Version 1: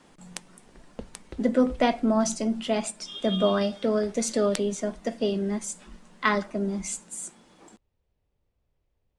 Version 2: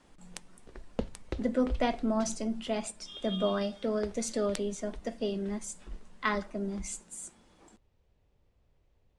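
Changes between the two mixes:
speech -6.5 dB; background +6.0 dB

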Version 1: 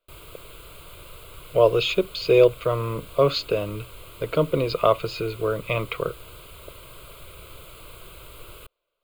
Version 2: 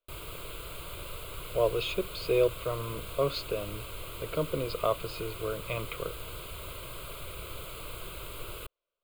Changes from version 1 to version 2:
speech -9.5 dB; reverb: on, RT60 1.0 s

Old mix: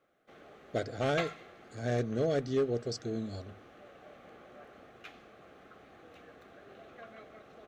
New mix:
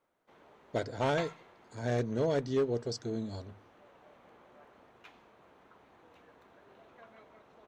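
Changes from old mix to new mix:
background -6.0 dB; master: remove Butterworth band-stop 950 Hz, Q 3.8

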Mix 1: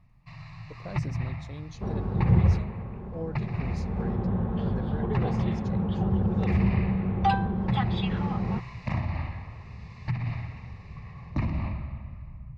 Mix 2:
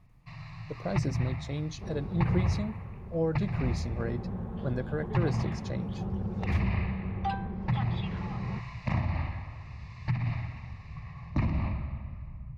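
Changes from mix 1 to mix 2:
speech +7.0 dB; second sound -8.5 dB

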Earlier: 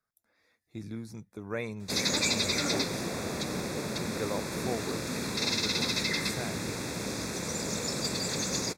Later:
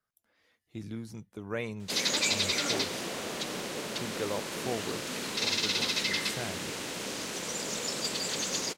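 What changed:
background: add bell 69 Hz -14.5 dB 2.9 oct; master: remove Butterworth band-stop 3000 Hz, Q 3.8

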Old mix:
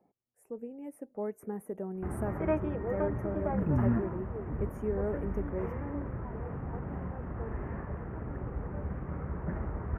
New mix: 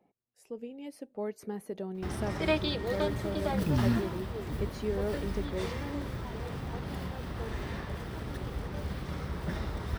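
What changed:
background: remove air absorption 280 m; master: remove Butterworth band-stop 4100 Hz, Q 0.54

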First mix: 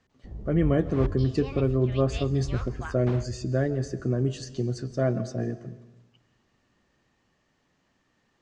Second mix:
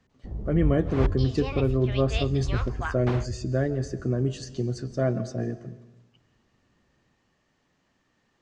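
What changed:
first sound +5.0 dB; second sound +6.5 dB

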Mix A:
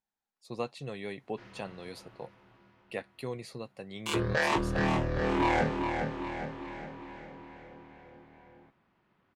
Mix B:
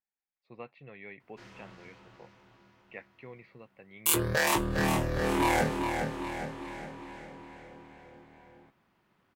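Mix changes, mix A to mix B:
speech: add ladder low-pass 2500 Hz, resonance 60%; background: remove air absorption 140 m

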